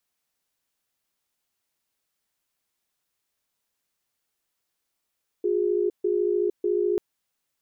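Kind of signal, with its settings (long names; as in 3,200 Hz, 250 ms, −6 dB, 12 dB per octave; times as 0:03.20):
tone pair in a cadence 358 Hz, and 412 Hz, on 0.46 s, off 0.14 s, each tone −23.5 dBFS 1.54 s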